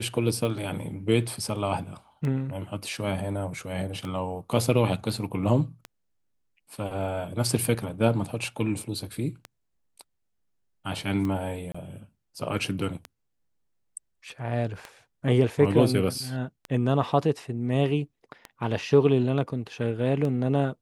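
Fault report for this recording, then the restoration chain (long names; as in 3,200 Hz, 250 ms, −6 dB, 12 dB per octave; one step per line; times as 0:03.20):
scratch tick 33 1/3 rpm
0:11.72–0:11.74: drop-out 25 ms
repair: click removal
repair the gap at 0:11.72, 25 ms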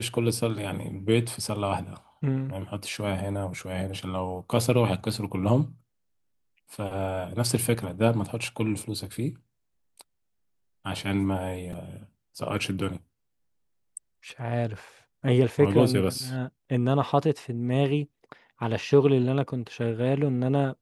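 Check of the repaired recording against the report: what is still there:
none of them is left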